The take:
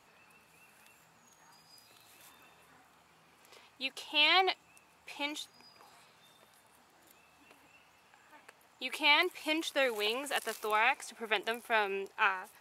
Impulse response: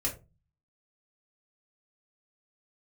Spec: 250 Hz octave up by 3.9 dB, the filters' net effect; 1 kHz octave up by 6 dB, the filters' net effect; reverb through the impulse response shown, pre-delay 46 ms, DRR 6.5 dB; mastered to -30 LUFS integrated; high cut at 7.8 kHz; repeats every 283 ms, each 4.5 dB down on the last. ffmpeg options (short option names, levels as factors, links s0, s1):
-filter_complex "[0:a]lowpass=7800,equalizer=f=250:t=o:g=5,equalizer=f=1000:t=o:g=7.5,aecho=1:1:283|566|849|1132|1415|1698|1981|2264|2547:0.596|0.357|0.214|0.129|0.0772|0.0463|0.0278|0.0167|0.01,asplit=2[s0][s1];[1:a]atrim=start_sample=2205,adelay=46[s2];[s1][s2]afir=irnorm=-1:irlink=0,volume=0.282[s3];[s0][s3]amix=inputs=2:normalize=0,volume=0.668"